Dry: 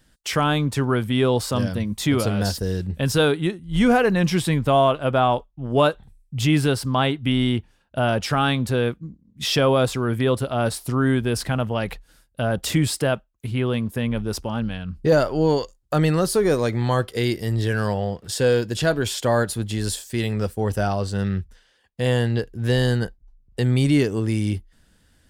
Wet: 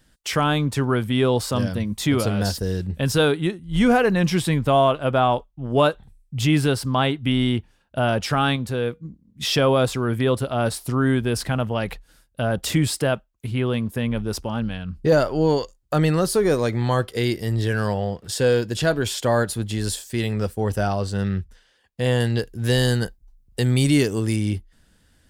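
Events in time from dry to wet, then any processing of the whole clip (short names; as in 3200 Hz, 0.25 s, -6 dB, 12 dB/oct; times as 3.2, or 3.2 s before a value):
8.56–9.05 resonator 160 Hz, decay 0.18 s, harmonics odd, mix 40%
22.2–24.36 high shelf 4400 Hz +10 dB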